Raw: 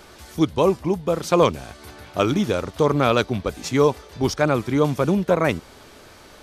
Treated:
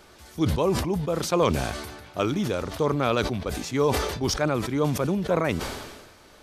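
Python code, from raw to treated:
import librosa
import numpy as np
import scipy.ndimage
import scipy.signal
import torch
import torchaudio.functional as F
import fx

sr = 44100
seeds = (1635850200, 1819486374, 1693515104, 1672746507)

y = fx.sustainer(x, sr, db_per_s=43.0)
y = y * librosa.db_to_amplitude(-6.0)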